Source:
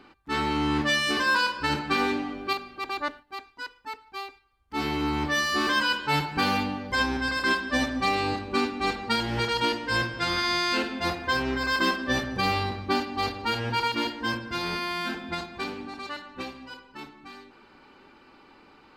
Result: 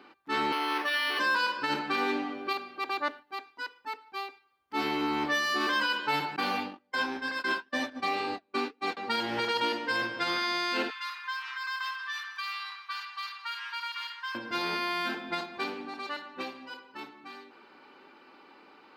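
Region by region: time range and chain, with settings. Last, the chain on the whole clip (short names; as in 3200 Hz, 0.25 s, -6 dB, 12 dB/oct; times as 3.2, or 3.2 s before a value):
0.52–1.19 HPF 340 Hz 24 dB/oct + tilt shelf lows -5.5 dB, about 850 Hz + decimation joined by straight lines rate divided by 6×
6.36–8.97 gate -30 dBFS, range -30 dB + flange 2 Hz, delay 3 ms, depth 4.9 ms, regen -70%
10.9–14.35 Chebyshev high-pass 1000 Hz, order 6 + compressor 2.5:1, threshold -34 dBFS
whole clip: HPF 280 Hz 12 dB/oct; bell 7900 Hz -6.5 dB 1 oct; limiter -19.5 dBFS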